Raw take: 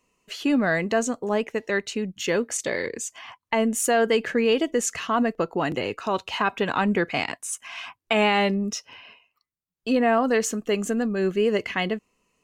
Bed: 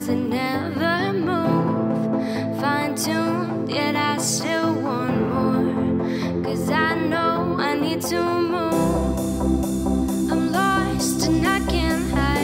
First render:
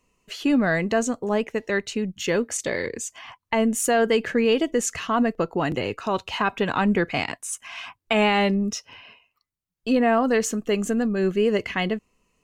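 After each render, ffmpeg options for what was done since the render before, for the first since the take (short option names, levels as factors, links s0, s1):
-af "lowshelf=f=110:g=10.5"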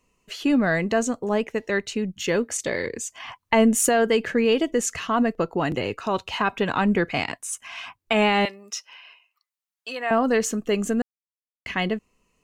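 -filter_complex "[0:a]asettb=1/sr,asplit=3[s0][s1][s2];[s0]atrim=end=8.454[s3];[s1]atrim=start=8.45:end=10.11,asetpts=PTS-STARTPTS,afade=t=in:d=0.004:c=qsin,afade=t=out:st=1.656:d=0.004:c=qsin,highpass=920[s4];[s2]atrim=start=10.106[s5];[s3][s4]acrossfade=d=0.004:c1=hsin:c2=qsin[s6];[s6][s5]acrossfade=d=0.004:c1=qsin:c2=hsin,asplit=5[s7][s8][s9][s10][s11];[s7]atrim=end=3.202[s12];[s8]atrim=start=3.198:end=3.892,asetpts=PTS-STARTPTS,volume=1.58[s13];[s9]atrim=start=3.888:end=11.02,asetpts=PTS-STARTPTS,afade=t=out:st=7.128:d=0.004:c=hsin[s14];[s10]atrim=start=11.02:end=11.66,asetpts=PTS-STARTPTS,volume=0[s15];[s11]atrim=start=11.66,asetpts=PTS-STARTPTS,afade=t=in:d=0.004:c=hsin[s16];[s12][s13]acrossfade=d=0.004:c1=hsin:c2=hsin[s17];[s14][s15][s16]concat=n=3:v=0:a=1[s18];[s17][s18]acrossfade=d=0.004:c1=hsin:c2=hsin"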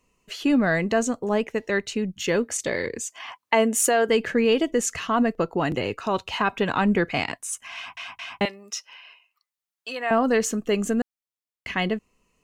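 -filter_complex "[0:a]asettb=1/sr,asplit=3[s0][s1][s2];[s0]atrim=end=3.094[s3];[s1]atrim=start=3.09:end=4.09,asetpts=PTS-STARTPTS,afade=t=in:d=0.004:c=qsin,afade=t=out:st=0.996:d=0.004:c=qsin,highpass=310[s4];[s2]atrim=start=4.086[s5];[s3][s4]acrossfade=d=0.004:c1=hsin:c2=qsin[s6];[s6][s5]acrossfade=d=0.004:c1=qsin:c2=hsin,asplit=4[s7][s8][s9][s10];[s7]atrim=end=7.972[s11];[s8]atrim=start=7.748:end=7.972[s12];[s9]atrim=start=7.748:end=7.972[s13];[s10]atrim=start=8.408[s14];[s11][s12]acrossfade=d=0.004:c1=hsin:c2=hsin[s15];[s15][s13]acrossfade=d=0.004:c1=hsin:c2=hsin[s16];[s16][s14]acrossfade=d=0.004:c1=hsin:c2=hsin"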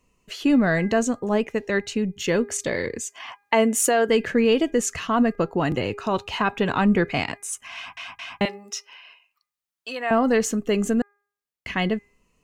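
-af "lowshelf=f=240:g=4.5,bandreject=f=406.8:t=h:w=4,bandreject=f=813.6:t=h:w=4,bandreject=f=1220.4:t=h:w=4,bandreject=f=1627.2:t=h:w=4,bandreject=f=2034:t=h:w=4,bandreject=f=2440.8:t=h:w=4"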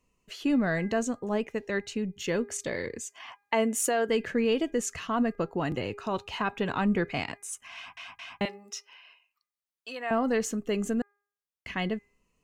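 -af "volume=0.447"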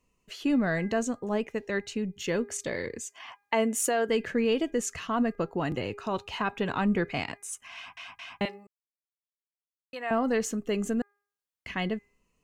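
-filter_complex "[0:a]asplit=3[s0][s1][s2];[s0]atrim=end=8.67,asetpts=PTS-STARTPTS,afade=t=out:st=8.666:d=0.004:c=hsin[s3];[s1]atrim=start=8.67:end=9.93,asetpts=PTS-STARTPTS,volume=0[s4];[s2]atrim=start=9.93,asetpts=PTS-STARTPTS,afade=t=in:d=0.004:c=hsin[s5];[s3][s4][s5]concat=n=3:v=0:a=1"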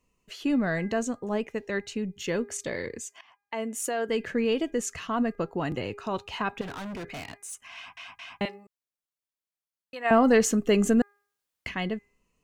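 -filter_complex "[0:a]asettb=1/sr,asplit=3[s0][s1][s2];[s0]atrim=end=6.614[s3];[s1]atrim=start=6.61:end=7.63,asetpts=PTS-STARTPTS,afade=t=in:d=0.004:c=qsin,afade=t=out:st=1.016:d=0.004:c=qsin,volume=56.2,asoftclip=hard,volume=0.0178[s4];[s2]atrim=start=7.626[s5];[s3][s4]acrossfade=d=0.004:c1=hsin:c2=qsin[s6];[s6][s5]acrossfade=d=0.004:c1=qsin:c2=hsin,asplit=3[s7][s8][s9];[s7]afade=t=out:st=10.04:d=0.02[s10];[s8]acontrast=89,afade=t=in:st=10.04:d=0.02,afade=t=out:st=11.68:d=0.02[s11];[s9]afade=t=in:st=11.68:d=0.02[s12];[s10][s11][s12]amix=inputs=3:normalize=0,asplit=2[s13][s14];[s13]atrim=end=3.21,asetpts=PTS-STARTPTS,afade=t=out:st=3.206:d=0.004:c=hsin:silence=0.158489[s15];[s14]atrim=start=3.21,asetpts=PTS-STARTPTS,afade=t=in:d=1.11:silence=0.158489[s16];[s15][s16]concat=n=2:v=0:a=1"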